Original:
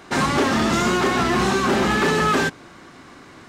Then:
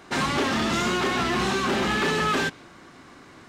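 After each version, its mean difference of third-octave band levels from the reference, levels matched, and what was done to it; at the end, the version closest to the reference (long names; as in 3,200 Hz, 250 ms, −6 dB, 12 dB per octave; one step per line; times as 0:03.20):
1.0 dB: dynamic equaliser 3,100 Hz, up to +5 dB, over −38 dBFS, Q 1
in parallel at −6 dB: soft clipping −22.5 dBFS, distortion −9 dB
on the sum: level −7.5 dB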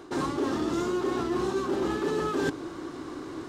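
6.5 dB: drawn EQ curve 130 Hz 0 dB, 220 Hz −5 dB, 310 Hz +11 dB, 650 Hz −2 dB, 1,100 Hz 0 dB, 2,200 Hz −9 dB, 3,400 Hz −3 dB
reversed playback
downward compressor 10 to 1, threshold −28 dBFS, peak gain reduction 17.5 dB
reversed playback
level +2.5 dB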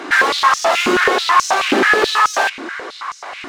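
10.0 dB: mid-hump overdrive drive 24 dB, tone 3,100 Hz, clips at −9 dBFS
high-pass on a step sequencer 9.3 Hz 290–6,000 Hz
level −2 dB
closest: first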